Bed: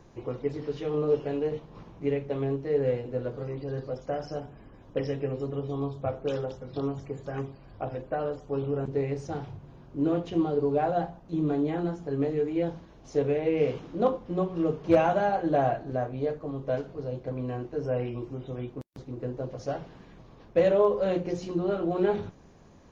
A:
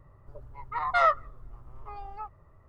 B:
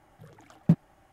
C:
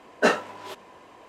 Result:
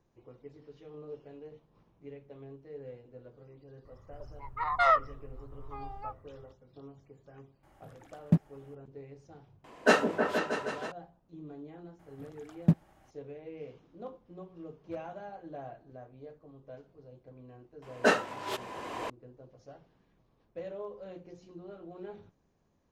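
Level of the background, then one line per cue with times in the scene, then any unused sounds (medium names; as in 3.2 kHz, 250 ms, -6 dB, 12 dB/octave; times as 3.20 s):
bed -19 dB
3.85 s: add A -1.5 dB
7.63 s: add B -3 dB
9.64 s: add C -2.5 dB + delay with an opening low-pass 158 ms, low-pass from 400 Hz, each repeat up 2 oct, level -3 dB
11.99 s: add B -2.5 dB
17.82 s: add C -4 dB + recorder AGC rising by 19 dB/s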